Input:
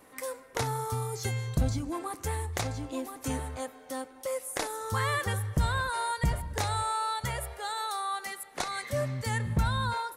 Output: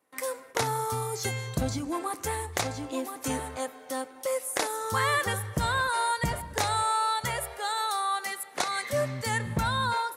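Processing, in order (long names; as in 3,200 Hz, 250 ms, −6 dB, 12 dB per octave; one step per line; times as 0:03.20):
noise gate with hold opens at −44 dBFS
high-pass filter 240 Hz 6 dB per octave
level +4.5 dB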